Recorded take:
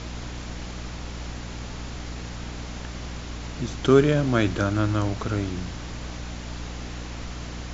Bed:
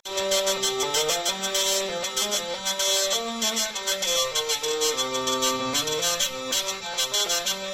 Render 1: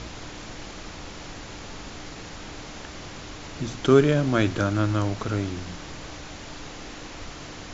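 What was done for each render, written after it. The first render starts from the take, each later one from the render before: de-hum 60 Hz, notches 4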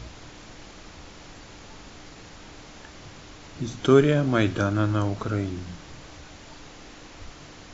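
noise print and reduce 6 dB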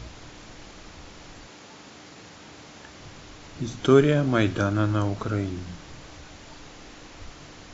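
1.47–2.99 HPF 180 Hz -> 68 Hz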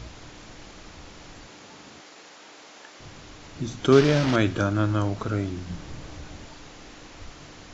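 2–3 HPF 380 Hz; 3.92–4.36 delta modulation 32 kbps, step -21 dBFS; 5.7–6.47 low shelf 440 Hz +6.5 dB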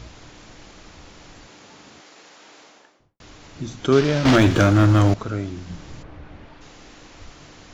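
2.57–3.2 studio fade out; 4.25–5.14 sample leveller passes 3; 6.02–6.6 LPF 1900 Hz -> 2800 Hz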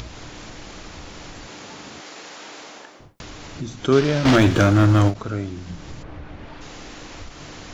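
upward compressor, threshold -29 dBFS; ending taper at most 250 dB/s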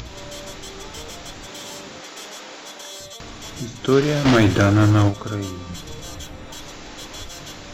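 add bed -14 dB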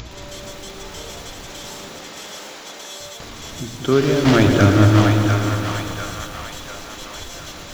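on a send: split-band echo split 690 Hz, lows 0.195 s, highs 0.697 s, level -5 dB; on the sum: lo-fi delay 0.112 s, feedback 80%, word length 6-bit, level -9.5 dB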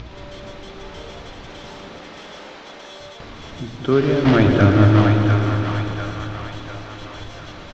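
air absorption 210 m; feedback echo 0.486 s, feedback 57%, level -16.5 dB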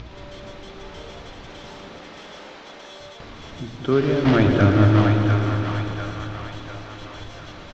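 gain -2.5 dB

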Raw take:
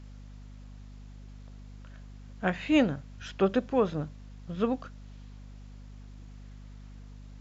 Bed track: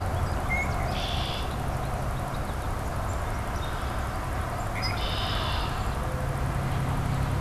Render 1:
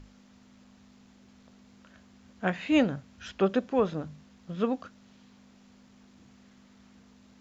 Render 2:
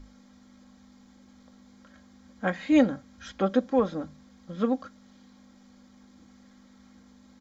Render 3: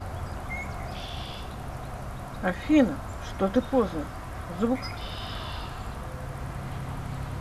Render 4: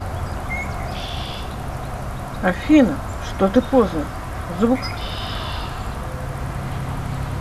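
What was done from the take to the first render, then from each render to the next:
notches 50/100/150 Hz
bell 2700 Hz -13.5 dB 0.2 oct; comb 3.7 ms, depth 61%
add bed track -7 dB
gain +8.5 dB; limiter -3 dBFS, peak gain reduction 2.5 dB

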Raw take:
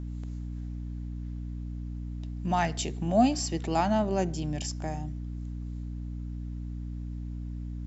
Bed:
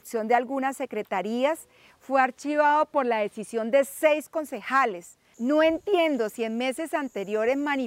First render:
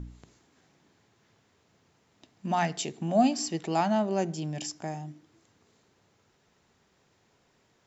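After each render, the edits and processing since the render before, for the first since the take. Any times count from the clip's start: de-hum 60 Hz, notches 5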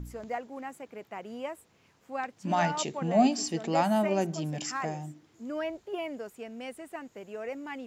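add bed -13 dB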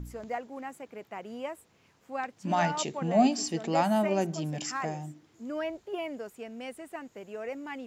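nothing audible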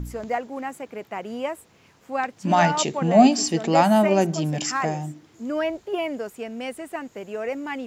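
gain +8.5 dB

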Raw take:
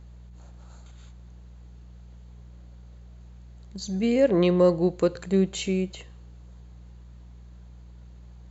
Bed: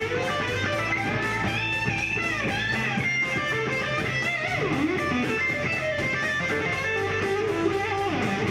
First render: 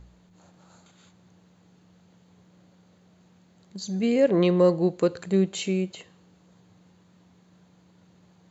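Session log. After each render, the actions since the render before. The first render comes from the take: de-hum 60 Hz, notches 2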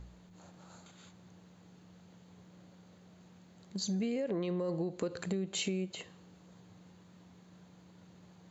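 limiter -19 dBFS, peak gain reduction 10 dB; compressor 10:1, threshold -31 dBFS, peak gain reduction 9 dB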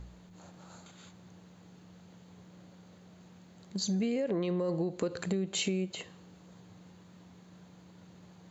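gain +3 dB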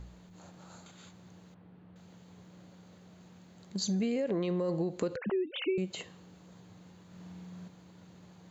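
1.54–1.96 air absorption 480 m; 5.16–5.78 sine-wave speech; 7.06–7.68 flutter echo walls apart 8.6 m, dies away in 1 s

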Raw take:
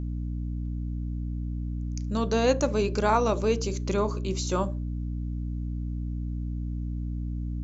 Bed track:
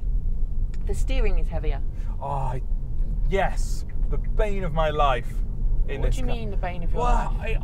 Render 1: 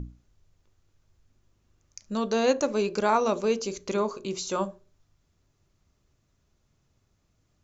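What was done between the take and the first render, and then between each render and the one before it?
notches 60/120/180/240/300/360 Hz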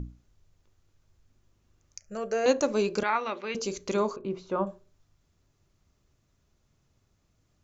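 1.99–2.46 fixed phaser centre 1000 Hz, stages 6; 3.03–3.55 speaker cabinet 430–3700 Hz, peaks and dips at 450 Hz -9 dB, 650 Hz -9 dB, 1000 Hz -5 dB, 2000 Hz +9 dB; 4.16–4.67 LPF 1500 Hz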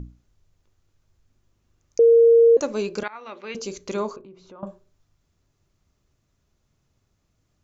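1.99–2.57 bleep 463 Hz -10 dBFS; 3.08–3.52 fade in, from -21.5 dB; 4.21–4.63 compressor 3:1, threshold -47 dBFS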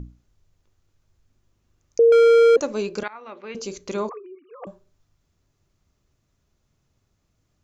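2.12–2.56 overdrive pedal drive 28 dB, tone 1600 Hz, clips at -9.5 dBFS; 3.13–3.57 high shelf 2900 Hz -9.5 dB; 4.09–4.67 sine-wave speech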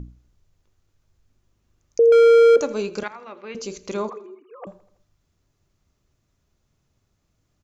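feedback echo 82 ms, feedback 55%, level -20 dB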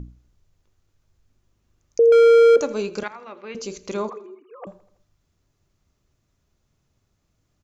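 nothing audible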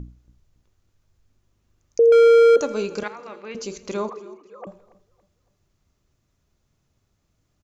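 feedback echo 0.28 s, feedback 38%, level -20 dB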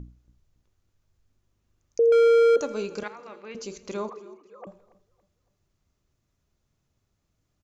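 gain -5 dB

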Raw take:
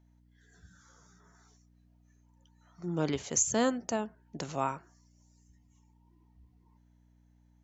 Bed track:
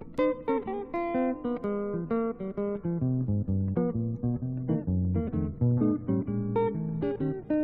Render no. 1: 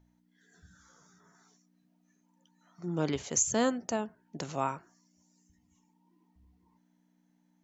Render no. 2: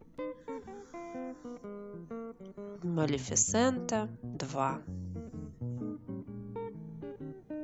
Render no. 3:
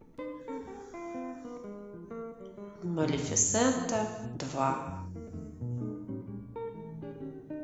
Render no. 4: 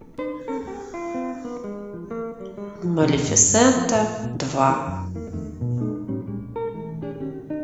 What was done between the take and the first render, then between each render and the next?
de-hum 60 Hz, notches 2
add bed track -13.5 dB
non-linear reverb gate 0.37 s falling, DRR 2.5 dB
gain +11 dB

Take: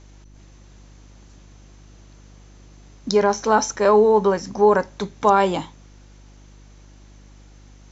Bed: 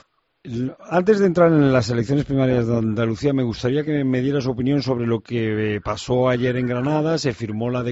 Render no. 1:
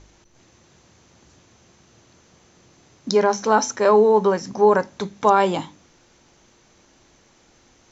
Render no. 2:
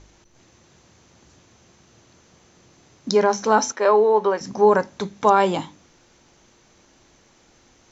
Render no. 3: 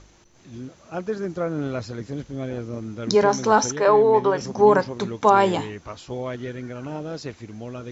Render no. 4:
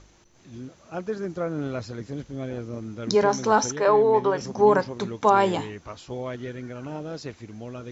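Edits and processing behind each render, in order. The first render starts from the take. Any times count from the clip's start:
de-hum 50 Hz, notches 6
3.72–4.41 BPF 360–4300 Hz
add bed -12 dB
gain -2.5 dB

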